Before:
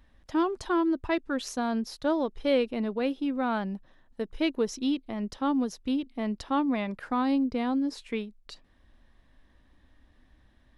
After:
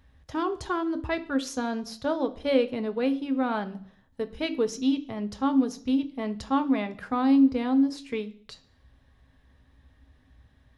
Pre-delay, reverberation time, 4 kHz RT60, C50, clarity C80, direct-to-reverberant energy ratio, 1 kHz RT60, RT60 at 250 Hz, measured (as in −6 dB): 3 ms, 0.55 s, 0.65 s, 16.5 dB, 20.5 dB, 8.0 dB, 0.55 s, 0.55 s